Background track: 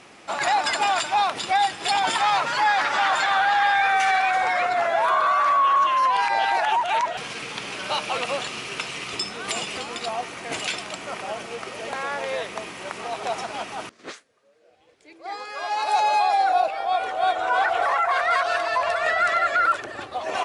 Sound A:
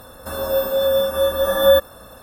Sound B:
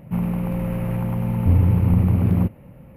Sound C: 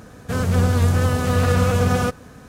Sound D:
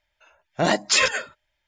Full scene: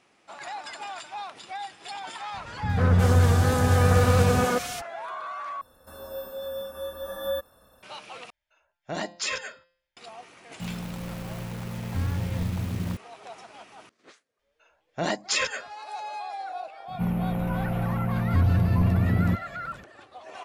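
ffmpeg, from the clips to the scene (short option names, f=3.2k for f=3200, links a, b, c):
-filter_complex "[4:a]asplit=2[a][b];[2:a]asplit=2[c][d];[0:a]volume=-15.5dB[e];[3:a]acrossover=split=200|2200[f][g][h];[g]adelay=140[i];[h]adelay=360[j];[f][i][j]amix=inputs=3:normalize=0[k];[a]bandreject=f=173.6:t=h:w=4,bandreject=f=347.2:t=h:w=4,bandreject=f=520.8:t=h:w=4,bandreject=f=694.4:t=h:w=4,bandreject=f=868:t=h:w=4,bandreject=f=1.0416k:t=h:w=4,bandreject=f=1.2152k:t=h:w=4,bandreject=f=1.3888k:t=h:w=4,bandreject=f=1.5624k:t=h:w=4,bandreject=f=1.736k:t=h:w=4,bandreject=f=1.9096k:t=h:w=4,bandreject=f=2.0832k:t=h:w=4,bandreject=f=2.2568k:t=h:w=4,bandreject=f=2.4304k:t=h:w=4,bandreject=f=2.604k:t=h:w=4,bandreject=f=2.7776k:t=h:w=4,bandreject=f=2.9512k:t=h:w=4,bandreject=f=3.1248k:t=h:w=4,bandreject=f=3.2984k:t=h:w=4,bandreject=f=3.472k:t=h:w=4,bandreject=f=3.6456k:t=h:w=4,bandreject=f=3.8192k:t=h:w=4,bandreject=f=3.9928k:t=h:w=4,bandreject=f=4.1664k:t=h:w=4,bandreject=f=4.34k:t=h:w=4,bandreject=f=4.5136k:t=h:w=4,bandreject=f=4.6872k:t=h:w=4,bandreject=f=4.8608k:t=h:w=4,bandreject=f=5.0344k:t=h:w=4[l];[c]acrusher=bits=4:mix=0:aa=0.000001[m];[d]acontrast=79[n];[e]asplit=3[o][p][q];[o]atrim=end=5.614[r];[1:a]atrim=end=2.22,asetpts=PTS-STARTPTS,volume=-16.5dB[s];[p]atrim=start=7.826:end=8.304[t];[l]atrim=end=1.67,asetpts=PTS-STARTPTS,volume=-11dB[u];[q]atrim=start=9.966[v];[k]atrim=end=2.48,asetpts=PTS-STARTPTS,volume=-1dB,afade=t=in:d=0.004:c=hsin,afade=t=out:st=2.476:d=0.004:c=hsin,adelay=2340[w];[m]atrim=end=2.96,asetpts=PTS-STARTPTS,volume=-12dB,afade=t=in:d=0.004:c=hsin,afade=t=out:st=2.956:d=0.004:c=hsin,adelay=10490[x];[b]atrim=end=1.67,asetpts=PTS-STARTPTS,volume=-7dB,afade=t=in:d=0.004:c=hsin,afade=t=out:st=1.666:d=0.004:c=hsin,adelay=14390[y];[n]atrim=end=2.96,asetpts=PTS-STARTPTS,volume=-10.5dB,afade=t=in:d=0.004:c=hsin,afade=t=out:st=2.956:d=0.004:c=hsin,adelay=16880[z];[r][s]acrossfade=d=0.004:c1=hsin:c2=hsin[aa];[aa][t]acrossfade=d=0.004:c1=hsin:c2=hsin[ab];[ab][u]acrossfade=d=0.004:c1=hsin:c2=hsin[ac];[ac][v]acrossfade=d=0.004:c1=hsin:c2=hsin[ad];[ad][w][x][y][z]amix=inputs=5:normalize=0"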